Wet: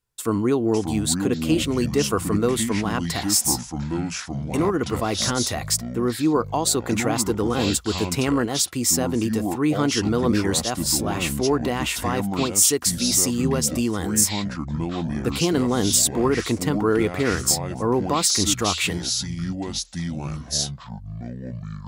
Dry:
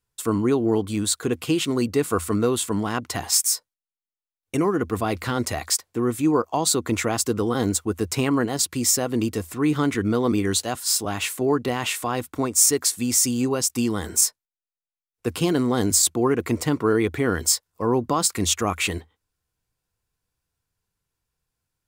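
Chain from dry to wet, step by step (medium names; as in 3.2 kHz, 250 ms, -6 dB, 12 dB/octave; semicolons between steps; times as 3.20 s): ever faster or slower copies 479 ms, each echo -6 st, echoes 2, each echo -6 dB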